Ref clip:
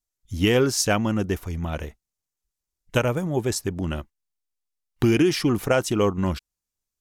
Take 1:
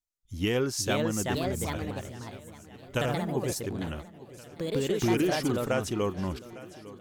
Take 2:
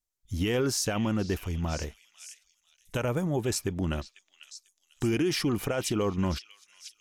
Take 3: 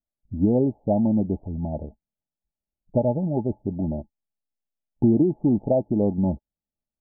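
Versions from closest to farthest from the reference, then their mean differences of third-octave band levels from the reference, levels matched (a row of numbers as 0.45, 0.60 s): 2, 1, 3; 3.5, 6.5, 13.5 dB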